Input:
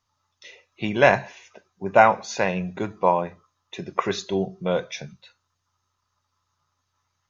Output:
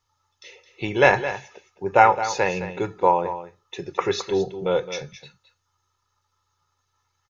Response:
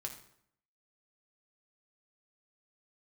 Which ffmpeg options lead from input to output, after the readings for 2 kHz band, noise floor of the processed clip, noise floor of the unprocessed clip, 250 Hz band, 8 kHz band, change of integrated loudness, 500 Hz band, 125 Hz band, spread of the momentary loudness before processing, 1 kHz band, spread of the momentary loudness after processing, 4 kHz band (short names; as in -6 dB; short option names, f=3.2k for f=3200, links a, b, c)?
+1.0 dB, -75 dBFS, -77 dBFS, -2.0 dB, n/a, +0.5 dB, +0.5 dB, -1.5 dB, 18 LU, +2.0 dB, 17 LU, +1.5 dB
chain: -af "aecho=1:1:2.3:0.62,aecho=1:1:215:0.251"